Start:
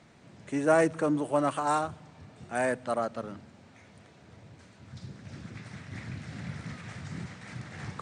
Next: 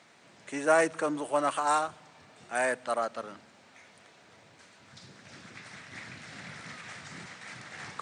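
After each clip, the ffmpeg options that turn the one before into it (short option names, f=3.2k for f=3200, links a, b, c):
-af "highpass=f=880:p=1,volume=4dB"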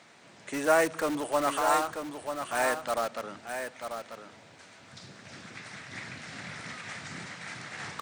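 -filter_complex "[0:a]asplit=2[a][b];[b]aeval=exprs='(mod(26.6*val(0)+1,2)-1)/26.6':c=same,volume=-8dB[c];[a][c]amix=inputs=2:normalize=0,aecho=1:1:940:0.422"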